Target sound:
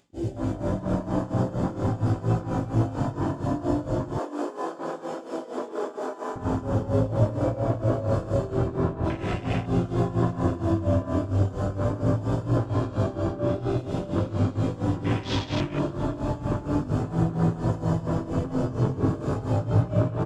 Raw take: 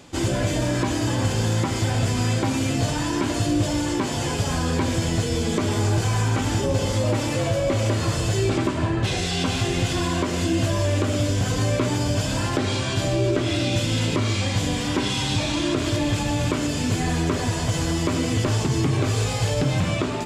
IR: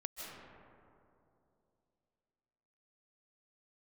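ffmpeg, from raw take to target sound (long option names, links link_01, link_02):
-filter_complex "[0:a]acontrast=89[link_01];[1:a]atrim=start_sample=2205[link_02];[link_01][link_02]afir=irnorm=-1:irlink=0,acompressor=mode=upward:threshold=-38dB:ratio=2.5,aecho=1:1:103:0.562,flanger=delay=17.5:depth=5.6:speed=0.4,asettb=1/sr,asplit=3[link_03][link_04][link_05];[link_03]atrim=end=4.184[link_06];[link_04]atrim=start=4.18:end=6.36,asetpts=PTS-STARTPTS,afade=type=in:duration=0.004:curve=qsin,afade=type=out:start_time=2.176:duration=0.004:curve=qsin,highpass=frequency=320:width=0.5412,highpass=frequency=320:width=1.3066[link_07];[link_05]atrim=start=6.356[link_08];[link_06][link_07]acrossfade=duration=0.004:curve1=hsin:curve2=qsin[link_09];[link_09][link_08]acrossfade=duration=0.004:curve1=qsin:curve2=hsin,afwtdn=0.0562,tremolo=f=4.3:d=0.81,volume=-4dB"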